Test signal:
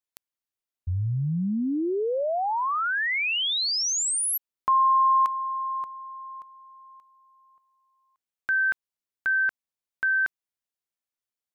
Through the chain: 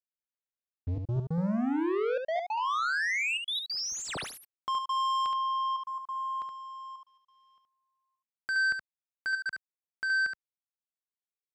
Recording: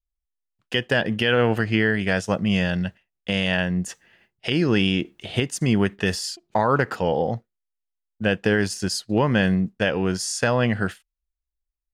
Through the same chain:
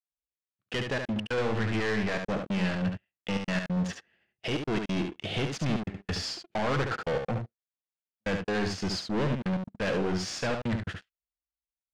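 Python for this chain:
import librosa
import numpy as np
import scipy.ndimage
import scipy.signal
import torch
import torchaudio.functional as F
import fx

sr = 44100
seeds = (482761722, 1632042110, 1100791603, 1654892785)

p1 = scipy.ndimage.median_filter(x, 5, mode='constant')
p2 = scipy.signal.sosfilt(scipy.signal.butter(2, 61.0, 'highpass', fs=sr, output='sos'), p1)
p3 = fx.peak_eq(p2, sr, hz=950.0, db=-5.0, octaves=0.3)
p4 = fx.rider(p3, sr, range_db=5, speed_s=2.0)
p5 = fx.leveller(p4, sr, passes=3)
p6 = 10.0 ** (-19.5 / 20.0) * np.tanh(p5 / 10.0 ** (-19.5 / 20.0))
p7 = fx.step_gate(p6, sr, bpm=138, pattern='.xxxxxxxx.x', floor_db=-60.0, edge_ms=4.5)
p8 = fx.air_absorb(p7, sr, metres=87.0)
p9 = p8 + fx.echo_single(p8, sr, ms=71, db=-5.5, dry=0)
y = p9 * 10.0 ** (-7.0 / 20.0)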